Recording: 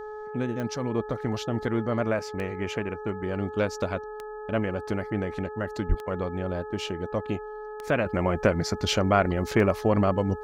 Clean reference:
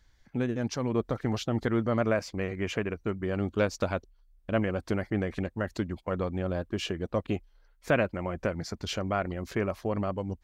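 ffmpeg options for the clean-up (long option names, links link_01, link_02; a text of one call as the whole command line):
ffmpeg -i in.wav -filter_complex "[0:a]adeclick=threshold=4,bandreject=frequency=426:width_type=h:width=4,bandreject=frequency=852:width_type=h:width=4,bandreject=frequency=1278:width_type=h:width=4,bandreject=frequency=1704:width_type=h:width=4,asplit=3[link_01][link_02][link_03];[link_01]afade=type=out:start_time=5.88:duration=0.02[link_04];[link_02]highpass=frequency=140:width=0.5412,highpass=frequency=140:width=1.3066,afade=type=in:start_time=5.88:duration=0.02,afade=type=out:start_time=6:duration=0.02[link_05];[link_03]afade=type=in:start_time=6:duration=0.02[link_06];[link_04][link_05][link_06]amix=inputs=3:normalize=0,asetnsamples=nb_out_samples=441:pad=0,asendcmd='8.06 volume volume -8dB',volume=0dB" out.wav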